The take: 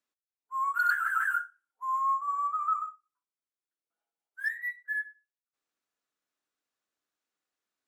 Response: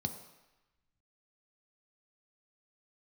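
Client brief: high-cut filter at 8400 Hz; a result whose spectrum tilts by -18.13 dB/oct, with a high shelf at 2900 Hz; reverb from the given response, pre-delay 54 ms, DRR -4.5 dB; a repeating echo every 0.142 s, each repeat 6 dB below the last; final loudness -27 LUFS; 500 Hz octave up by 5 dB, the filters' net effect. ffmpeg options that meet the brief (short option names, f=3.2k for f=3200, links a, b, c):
-filter_complex "[0:a]lowpass=8.4k,equalizer=f=500:t=o:g=7,highshelf=f=2.9k:g=-6.5,aecho=1:1:142|284|426|568|710|852:0.501|0.251|0.125|0.0626|0.0313|0.0157,asplit=2[a][b];[1:a]atrim=start_sample=2205,adelay=54[c];[b][c]afir=irnorm=-1:irlink=0,volume=3.5dB[d];[a][d]amix=inputs=2:normalize=0,volume=-0.5dB"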